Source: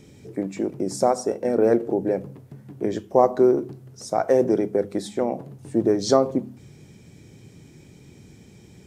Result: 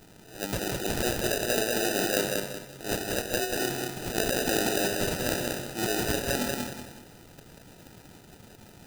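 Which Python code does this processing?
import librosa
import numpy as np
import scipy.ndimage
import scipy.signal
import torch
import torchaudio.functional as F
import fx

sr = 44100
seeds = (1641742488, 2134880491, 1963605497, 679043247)

y = fx.hum_notches(x, sr, base_hz=50, count=10)
y = fx.transient(y, sr, attack_db=-11, sustain_db=11)
y = fx.tilt_eq(y, sr, slope=3.0)
y = fx.sample_hold(y, sr, seeds[0], rate_hz=1100.0, jitter_pct=0)
y = fx.high_shelf(y, sr, hz=3100.0, db=9.5)
y = fx.over_compress(y, sr, threshold_db=-23.0, ratio=-0.5)
y = fx.echo_feedback(y, sr, ms=187, feedback_pct=33, wet_db=-3)
y = y * 10.0 ** (-5.0 / 20.0)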